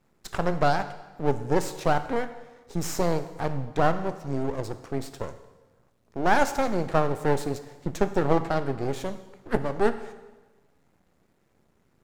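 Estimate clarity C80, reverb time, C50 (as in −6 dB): 14.0 dB, 1.2 s, 12.5 dB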